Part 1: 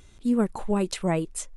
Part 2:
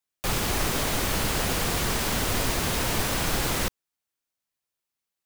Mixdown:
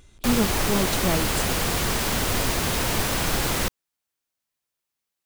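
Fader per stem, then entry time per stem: -0.5, +2.0 dB; 0.00, 0.00 s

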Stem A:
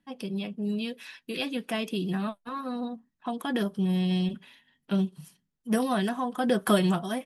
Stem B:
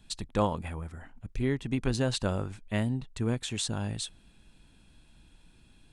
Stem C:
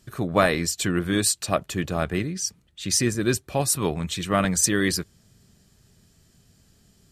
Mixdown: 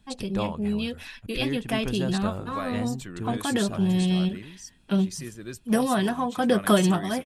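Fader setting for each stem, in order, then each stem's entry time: +3.0, -3.0, -15.5 dB; 0.00, 0.00, 2.20 s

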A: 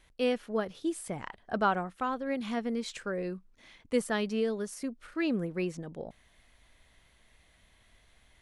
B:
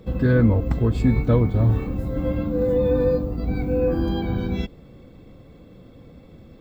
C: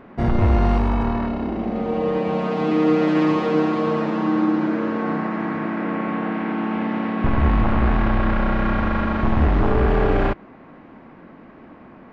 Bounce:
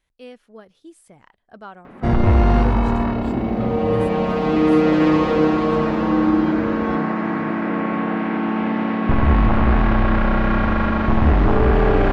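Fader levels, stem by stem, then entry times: -11.0, -9.5, +2.5 dB; 0.00, 2.30, 1.85 s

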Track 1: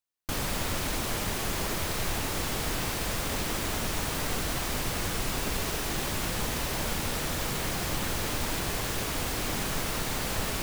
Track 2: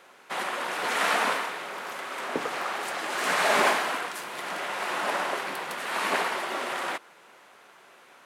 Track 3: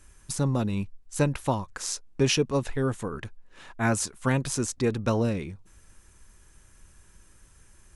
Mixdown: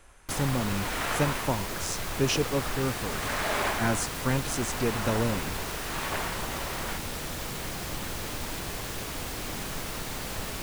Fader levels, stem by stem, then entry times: -4.0, -7.0, -3.0 dB; 0.00, 0.00, 0.00 s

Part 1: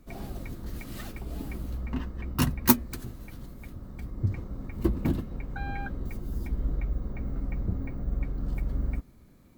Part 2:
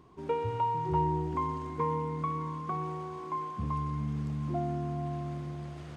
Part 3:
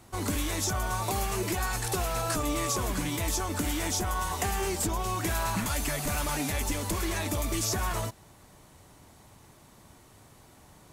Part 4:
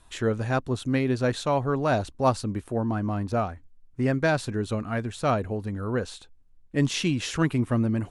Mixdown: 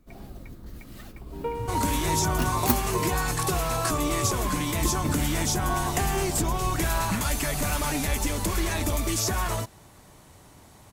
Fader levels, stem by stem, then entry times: -4.5 dB, 0.0 dB, +3.0 dB, off; 0.00 s, 1.15 s, 1.55 s, off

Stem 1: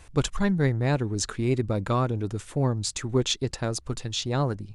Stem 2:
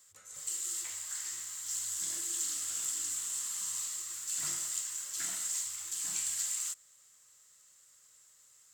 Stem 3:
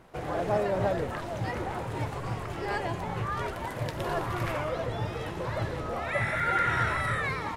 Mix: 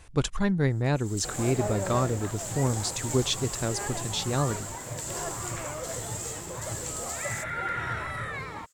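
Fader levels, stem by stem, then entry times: -1.5, -2.0, -5.0 dB; 0.00, 0.70, 1.10 s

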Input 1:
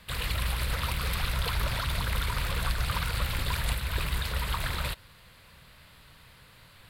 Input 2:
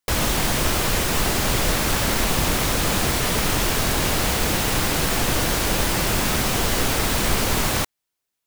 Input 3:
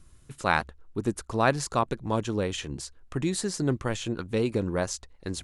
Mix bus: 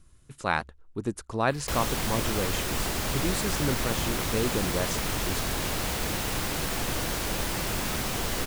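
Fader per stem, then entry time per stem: -14.5, -8.5, -2.5 dB; 1.40, 1.60, 0.00 s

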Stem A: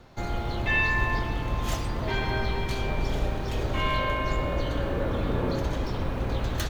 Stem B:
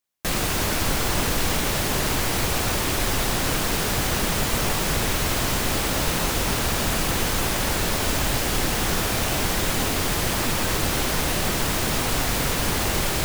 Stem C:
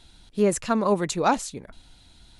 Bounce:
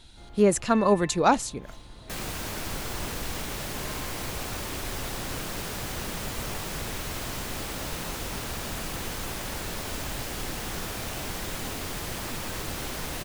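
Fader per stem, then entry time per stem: -19.0, -10.5, +1.0 dB; 0.00, 1.85, 0.00 s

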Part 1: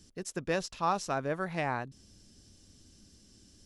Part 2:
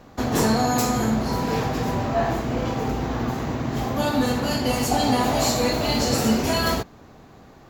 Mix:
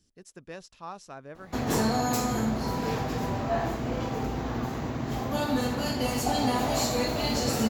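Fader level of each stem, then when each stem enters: -11.0, -5.5 dB; 0.00, 1.35 s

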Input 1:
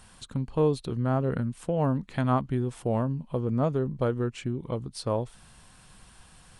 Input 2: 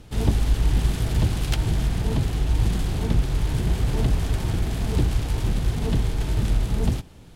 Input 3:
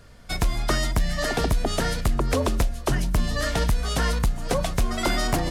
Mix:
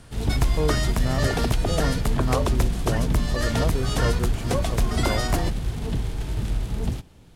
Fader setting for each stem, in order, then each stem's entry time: -2.5, -4.0, -1.5 dB; 0.00, 0.00, 0.00 s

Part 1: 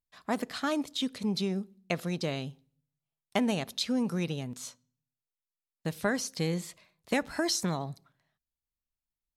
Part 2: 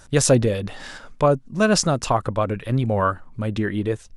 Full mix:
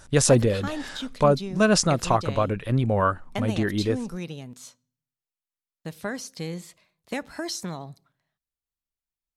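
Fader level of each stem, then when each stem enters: -2.5, -1.5 dB; 0.00, 0.00 s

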